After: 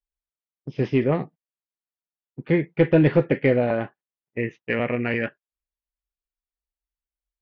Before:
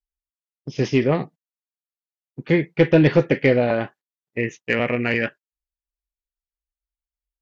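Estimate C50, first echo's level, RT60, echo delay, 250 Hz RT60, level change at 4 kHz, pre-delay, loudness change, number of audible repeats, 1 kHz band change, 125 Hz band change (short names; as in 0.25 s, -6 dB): none, none, none, none, none, -8.0 dB, none, -2.5 dB, none, -3.0 dB, -1.5 dB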